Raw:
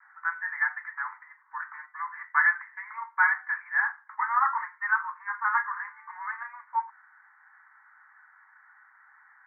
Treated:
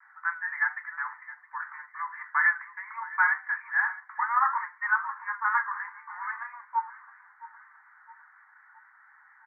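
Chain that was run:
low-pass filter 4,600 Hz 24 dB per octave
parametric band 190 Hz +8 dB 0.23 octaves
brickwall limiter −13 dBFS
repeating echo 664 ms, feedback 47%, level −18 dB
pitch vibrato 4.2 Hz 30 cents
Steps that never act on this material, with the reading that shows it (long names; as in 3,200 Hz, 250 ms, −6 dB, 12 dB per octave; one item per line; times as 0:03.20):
low-pass filter 4,600 Hz: nothing at its input above 2,300 Hz
parametric band 190 Hz: nothing at its input below 680 Hz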